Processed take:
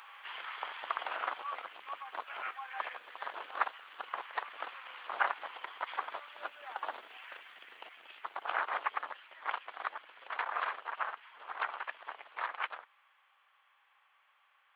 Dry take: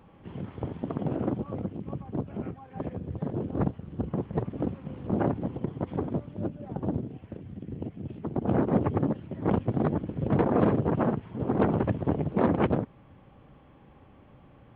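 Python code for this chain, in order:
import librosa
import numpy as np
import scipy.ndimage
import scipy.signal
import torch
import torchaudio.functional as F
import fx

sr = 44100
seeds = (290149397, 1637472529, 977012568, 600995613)

y = scipy.signal.sosfilt(scipy.signal.butter(4, 1200.0, 'highpass', fs=sr, output='sos'), x)
y = fx.rider(y, sr, range_db=10, speed_s=2.0)
y = F.gain(torch.from_numpy(y), 6.5).numpy()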